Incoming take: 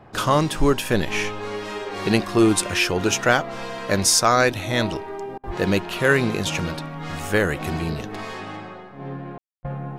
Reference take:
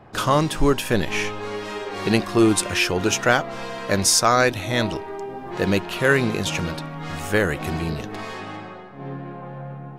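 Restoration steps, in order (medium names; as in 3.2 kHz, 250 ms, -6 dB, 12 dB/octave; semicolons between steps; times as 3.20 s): de-plosive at 5.46/9.60 s; room tone fill 9.38–9.63 s; interpolate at 5.38/9.59 s, 54 ms; trim 0 dB, from 9.59 s -5 dB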